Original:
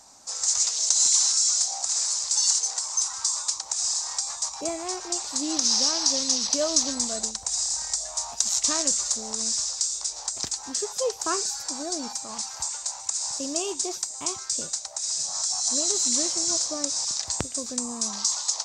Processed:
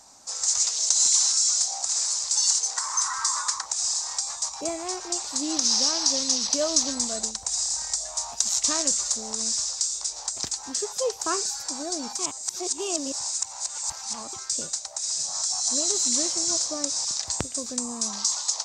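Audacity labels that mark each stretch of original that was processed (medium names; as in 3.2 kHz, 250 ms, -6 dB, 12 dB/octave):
2.770000	3.660000	high-order bell 1.4 kHz +13 dB 1.3 oct
12.190000	14.330000	reverse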